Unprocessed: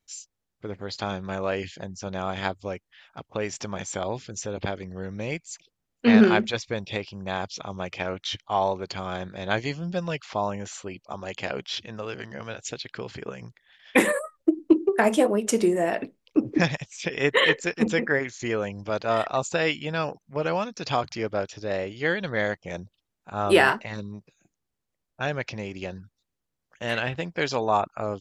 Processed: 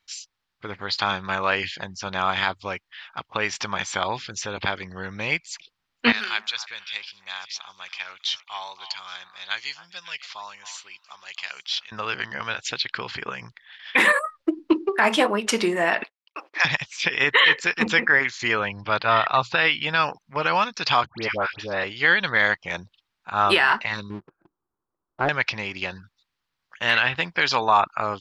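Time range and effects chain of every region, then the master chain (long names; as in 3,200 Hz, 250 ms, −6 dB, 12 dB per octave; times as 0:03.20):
0:06.12–0:11.92: first-order pre-emphasis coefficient 0.97 + echo through a band-pass that steps 274 ms, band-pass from 950 Hz, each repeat 1.4 octaves, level −11 dB
0:16.03–0:16.65: high-pass filter 670 Hz 24 dB per octave + noise gate −59 dBFS, range −24 dB
0:18.59–0:19.83: low-pass filter 4,600 Hz 24 dB per octave + parametric band 120 Hz +9 dB 0.26 octaves
0:21.06–0:21.84: low-pass filter 4,000 Hz + all-pass dispersion highs, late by 110 ms, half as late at 1,300 Hz
0:24.10–0:25.29: Butterworth low-pass 1,300 Hz + parametric band 350 Hz +12.5 dB 0.64 octaves + leveller curve on the samples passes 1
whole clip: flat-topped bell 2,100 Hz +13.5 dB 2.9 octaves; boost into a limiter +4 dB; level −6 dB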